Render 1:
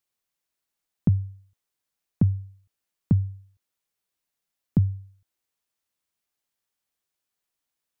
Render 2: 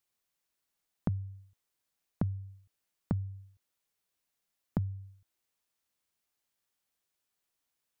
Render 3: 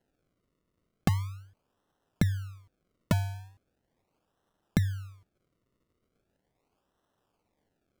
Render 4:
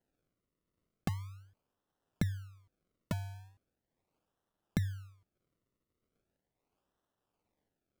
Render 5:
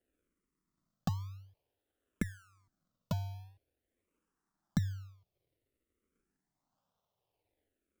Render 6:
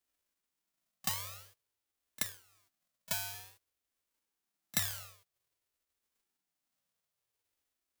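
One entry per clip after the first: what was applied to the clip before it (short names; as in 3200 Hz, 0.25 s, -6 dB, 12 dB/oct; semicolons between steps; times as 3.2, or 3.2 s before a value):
compressor 4:1, threshold -31 dBFS, peak gain reduction 13 dB
decimation with a swept rate 37×, swing 100% 0.39 Hz; gain +6 dB
tremolo triangle 1.5 Hz, depth 40%; gain -6 dB
endless phaser -0.52 Hz; gain +2.5 dB
spectral whitening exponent 0.1; pre-echo 30 ms -20.5 dB; gain -1.5 dB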